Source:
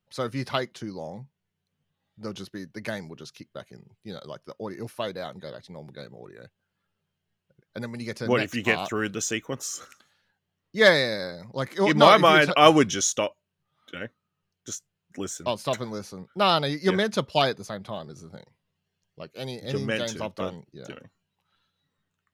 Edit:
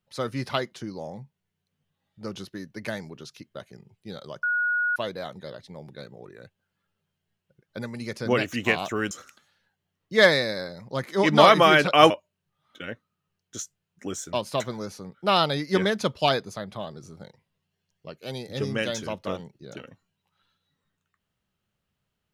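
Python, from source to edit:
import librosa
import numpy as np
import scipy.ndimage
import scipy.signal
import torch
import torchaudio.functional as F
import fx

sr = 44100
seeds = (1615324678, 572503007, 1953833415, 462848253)

y = fx.edit(x, sr, fx.bleep(start_s=4.43, length_s=0.53, hz=1450.0, db=-21.5),
    fx.cut(start_s=9.11, length_s=0.63),
    fx.cut(start_s=12.73, length_s=0.5), tone=tone)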